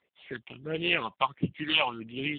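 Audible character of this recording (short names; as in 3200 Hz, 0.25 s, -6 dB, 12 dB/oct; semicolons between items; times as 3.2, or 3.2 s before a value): a buzz of ramps at a fixed pitch in blocks of 8 samples; phasing stages 6, 1.5 Hz, lowest notch 400–1500 Hz; AMR-NB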